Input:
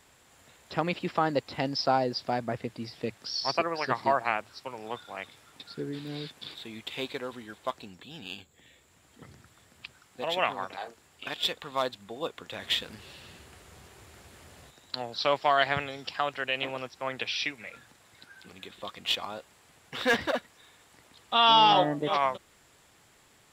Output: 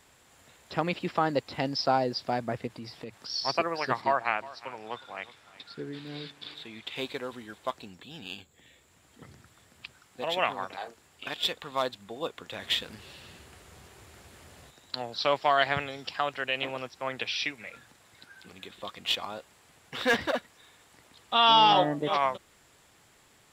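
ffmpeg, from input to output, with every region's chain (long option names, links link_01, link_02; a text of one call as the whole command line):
ffmpeg -i in.wav -filter_complex "[0:a]asettb=1/sr,asplit=3[link_01][link_02][link_03];[link_01]atrim=end=2.674[link_04];[link_02]atrim=start=2.67:end=3.3,asetpts=PTS-STARTPTS,afade=type=in:duration=0.004:curve=qsin,afade=type=out:start_time=0.626:duration=0.004:curve=qsin,equalizer=frequency=1000:width_type=o:width=0.86:gain=4,acompressor=threshold=-37dB:ratio=4:attack=3.2:release=140:knee=1:detection=peak[link_05];[link_03]atrim=start=3.296[link_06];[link_04][link_05]acrossfade=duration=0.004:curve1=hsin:curve2=qsin[link_07];[link_07][link_06]acrossfade=duration=0.004:curve1=qsin:curve2=hsin,asettb=1/sr,asplit=3[link_08][link_09][link_10];[link_08]atrim=end=4.014[link_11];[link_09]atrim=start=4.01:end=6.96,asetpts=PTS-STARTPTS,afade=type=in:duration=0.004:curve=qsin,afade=type=out:start_time=2.946:duration=0.004:curve=qsin,lowpass=frequency=2800:poles=1,tiltshelf=frequency=910:gain=-4,aecho=1:1:361:0.119,atrim=end_sample=130095[link_12];[link_10]atrim=start=6.956[link_13];[link_11][link_12]acrossfade=duration=0.004:curve1=hsin:curve2=qsin[link_14];[link_14][link_13]acrossfade=duration=0.004:curve1=qsin:curve2=hsin" out.wav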